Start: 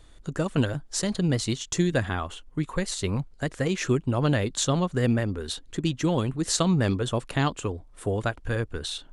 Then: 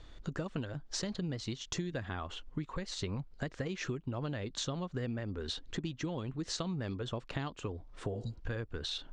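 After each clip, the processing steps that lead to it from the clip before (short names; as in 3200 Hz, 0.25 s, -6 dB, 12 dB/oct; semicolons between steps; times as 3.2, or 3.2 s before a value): LPF 5900 Hz 24 dB/oct; spectral repair 8.16–8.37, 250–3800 Hz both; compressor 10:1, threshold -34 dBFS, peak gain reduction 16.5 dB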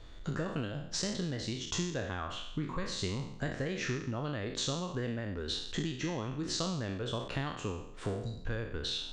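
spectral trails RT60 0.73 s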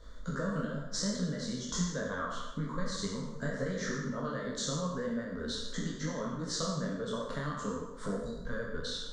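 fixed phaser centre 520 Hz, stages 8; on a send at -5.5 dB: reverb RT60 1.0 s, pre-delay 48 ms; on the sum: detuned doubles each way 17 cents; gain +6.5 dB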